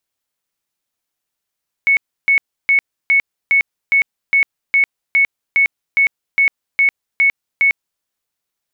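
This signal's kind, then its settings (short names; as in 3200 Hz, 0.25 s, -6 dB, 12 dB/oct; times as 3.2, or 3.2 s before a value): tone bursts 2210 Hz, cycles 219, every 0.41 s, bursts 15, -9 dBFS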